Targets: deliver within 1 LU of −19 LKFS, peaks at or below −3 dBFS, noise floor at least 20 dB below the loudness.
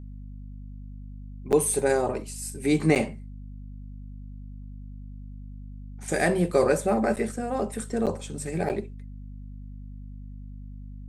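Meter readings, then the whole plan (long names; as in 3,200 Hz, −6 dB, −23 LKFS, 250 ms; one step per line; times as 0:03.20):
number of dropouts 5; longest dropout 8.2 ms; mains hum 50 Hz; hum harmonics up to 250 Hz; level of the hum −37 dBFS; integrated loudness −26.0 LKFS; sample peak −7.0 dBFS; target loudness −19.0 LKFS
→ repair the gap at 0:01.52/0:02.95/0:07.16/0:08.06/0:08.69, 8.2 ms
mains-hum notches 50/100/150/200/250 Hz
level +7 dB
brickwall limiter −3 dBFS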